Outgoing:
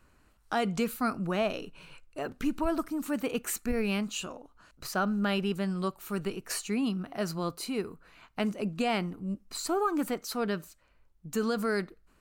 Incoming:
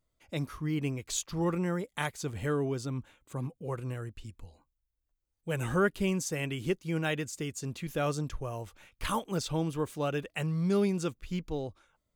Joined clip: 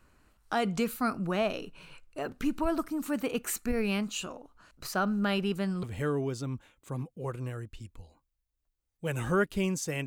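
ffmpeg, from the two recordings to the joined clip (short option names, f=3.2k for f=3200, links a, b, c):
-filter_complex "[0:a]apad=whole_dur=10.06,atrim=end=10.06,atrim=end=5.832[a];[1:a]atrim=start=2.268:end=6.5[b];[a][b]acrossfade=d=0.004:c1=hsin:c2=hsin"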